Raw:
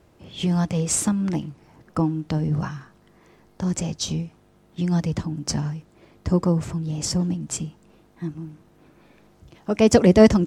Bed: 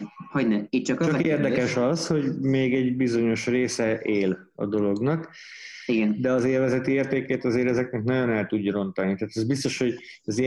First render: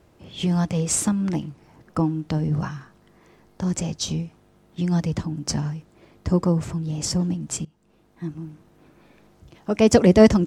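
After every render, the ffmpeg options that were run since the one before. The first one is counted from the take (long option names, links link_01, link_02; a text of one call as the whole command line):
ffmpeg -i in.wav -filter_complex "[0:a]asplit=2[link_01][link_02];[link_01]atrim=end=7.65,asetpts=PTS-STARTPTS,afade=type=out:start_time=7.646:duration=0.004:curve=hsin:silence=0.112202[link_03];[link_02]atrim=start=7.65,asetpts=PTS-STARTPTS,afade=type=in:duration=0.69:silence=0.112202[link_04];[link_03][link_04]concat=n=2:v=0:a=1" out.wav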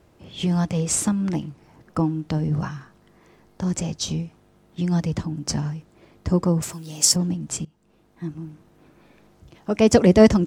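ffmpeg -i in.wav -filter_complex "[0:a]asettb=1/sr,asplit=3[link_01][link_02][link_03];[link_01]atrim=end=6.624[link_04];[link_02]atrim=start=6.62:end=7.16,asetpts=PTS-STARTPTS,afade=type=in:duration=0.004:curve=qsin,afade=type=out:start_time=0.536:duration=0.004:curve=qsin,aemphasis=mode=production:type=riaa[link_05];[link_03]atrim=start=7.156[link_06];[link_04][link_05]acrossfade=duration=0.004:curve1=hsin:curve2=qsin[link_07];[link_07][link_06]acrossfade=duration=0.004:curve1=qsin:curve2=hsin" out.wav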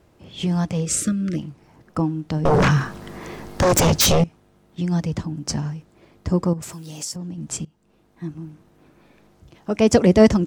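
ffmpeg -i in.wav -filter_complex "[0:a]asplit=3[link_01][link_02][link_03];[link_01]afade=type=out:start_time=0.85:duration=0.02[link_04];[link_02]asuperstop=centerf=870:order=12:qfactor=1.5,afade=type=in:start_time=0.85:duration=0.02,afade=type=out:start_time=1.37:duration=0.02[link_05];[link_03]afade=type=in:start_time=1.37:duration=0.02[link_06];[link_04][link_05][link_06]amix=inputs=3:normalize=0,asettb=1/sr,asplit=3[link_07][link_08][link_09];[link_07]atrim=end=2.454[link_10];[link_08]atrim=start=2.45:end=4.24,asetpts=PTS-STARTPTS,afade=type=in:duration=0.004:curve=qsin,afade=type=out:start_time=1.786:duration=0.004:curve=qsin,aeval=exprs='0.251*sin(PI/2*5.62*val(0)/0.251)':channel_layout=same[link_11];[link_09]atrim=start=4.236[link_12];[link_10][link_11]acrossfade=duration=0.004:curve1=hsin:curve2=qsin[link_13];[link_13][link_12]acrossfade=duration=0.004:curve1=qsin:curve2=hsin,asettb=1/sr,asplit=3[link_14][link_15][link_16];[link_14]atrim=end=6.534[link_17];[link_15]atrim=start=6.53:end=7.38,asetpts=PTS-STARTPTS,afade=type=in:duration=0.004:curve=qsin,afade=type=out:start_time=0.846:duration=0.004:curve=qsin,acompressor=threshold=-31dB:ratio=3:attack=3.2:release=140:knee=1:detection=peak[link_18];[link_16]atrim=start=7.376[link_19];[link_17][link_18]acrossfade=duration=0.004:curve1=hsin:curve2=qsin[link_20];[link_20][link_19]acrossfade=duration=0.004:curve1=qsin:curve2=hsin" out.wav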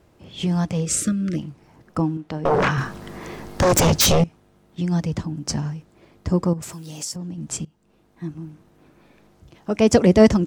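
ffmpeg -i in.wav -filter_complex "[0:a]asettb=1/sr,asplit=3[link_01][link_02][link_03];[link_01]atrim=end=2.174[link_04];[link_02]atrim=start=2.17:end=2.78,asetpts=PTS-STARTPTS,afade=type=in:duration=0.004:curve=qsin,afade=type=out:start_time=0.606:duration=0.004:curve=qsin,bass=frequency=250:gain=-9,treble=frequency=4000:gain=-8[link_05];[link_03]atrim=start=2.776[link_06];[link_04][link_05]acrossfade=duration=0.004:curve1=hsin:curve2=qsin[link_07];[link_07][link_06]acrossfade=duration=0.004:curve1=qsin:curve2=hsin" out.wav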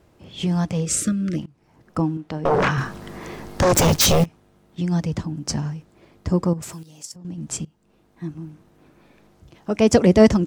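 ffmpeg -i in.wav -filter_complex "[0:a]asplit=3[link_01][link_02][link_03];[link_01]afade=type=out:start_time=3.74:duration=0.02[link_04];[link_02]acrusher=bits=6:dc=4:mix=0:aa=0.000001,afade=type=in:start_time=3.74:duration=0.02,afade=type=out:start_time=4.24:duration=0.02[link_05];[link_03]afade=type=in:start_time=4.24:duration=0.02[link_06];[link_04][link_05][link_06]amix=inputs=3:normalize=0,asettb=1/sr,asplit=3[link_07][link_08][link_09];[link_07]atrim=end=6.834[link_10];[link_08]atrim=start=6.83:end=7.25,asetpts=PTS-STARTPTS,afade=type=in:duration=0.004:curve=qsin,afade=type=out:start_time=0.416:duration=0.004:curve=qsin,agate=range=-11dB:threshold=-29dB:ratio=16:release=100:detection=peak[link_11];[link_09]atrim=start=7.246[link_12];[link_10][link_11]acrossfade=duration=0.004:curve1=hsin:curve2=qsin[link_13];[link_13][link_12]acrossfade=duration=0.004:curve1=qsin:curve2=hsin,asplit=2[link_14][link_15];[link_14]atrim=end=1.46,asetpts=PTS-STARTPTS,afade=type=out:start_time=1.456:duration=0.004:curve=hsin:silence=0.105925[link_16];[link_15]atrim=start=1.46,asetpts=PTS-STARTPTS,afade=type=in:duration=0.52:silence=0.105925[link_17];[link_16][link_17]concat=n=2:v=0:a=1" out.wav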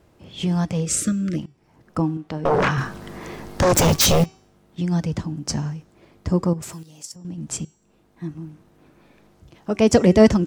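ffmpeg -i in.wav -af "bandreject=frequency=381.4:width_type=h:width=4,bandreject=frequency=762.8:width_type=h:width=4,bandreject=frequency=1144.2:width_type=h:width=4,bandreject=frequency=1525.6:width_type=h:width=4,bandreject=frequency=1907:width_type=h:width=4,bandreject=frequency=2288.4:width_type=h:width=4,bandreject=frequency=2669.8:width_type=h:width=4,bandreject=frequency=3051.2:width_type=h:width=4,bandreject=frequency=3432.6:width_type=h:width=4,bandreject=frequency=3814:width_type=h:width=4,bandreject=frequency=4195.4:width_type=h:width=4,bandreject=frequency=4576.8:width_type=h:width=4,bandreject=frequency=4958.2:width_type=h:width=4,bandreject=frequency=5339.6:width_type=h:width=4,bandreject=frequency=5721:width_type=h:width=4,bandreject=frequency=6102.4:width_type=h:width=4,bandreject=frequency=6483.8:width_type=h:width=4,bandreject=frequency=6865.2:width_type=h:width=4,bandreject=frequency=7246.6:width_type=h:width=4,bandreject=frequency=7628:width_type=h:width=4" out.wav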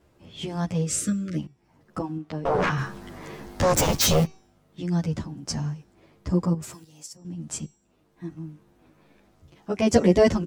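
ffmpeg -i in.wav -filter_complex "[0:a]aeval=exprs='0.794*(cos(1*acos(clip(val(0)/0.794,-1,1)))-cos(1*PI/2))+0.0398*(cos(3*acos(clip(val(0)/0.794,-1,1)))-cos(3*PI/2))':channel_layout=same,asplit=2[link_01][link_02];[link_02]adelay=10.9,afreqshift=-2.1[link_03];[link_01][link_03]amix=inputs=2:normalize=1" out.wav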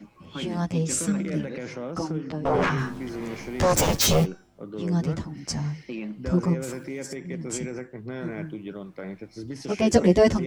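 ffmpeg -i in.wav -i bed.wav -filter_complex "[1:a]volume=-11.5dB[link_01];[0:a][link_01]amix=inputs=2:normalize=0" out.wav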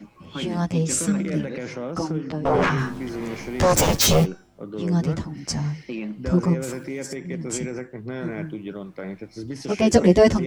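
ffmpeg -i in.wav -af "volume=3dB,alimiter=limit=-1dB:level=0:latency=1" out.wav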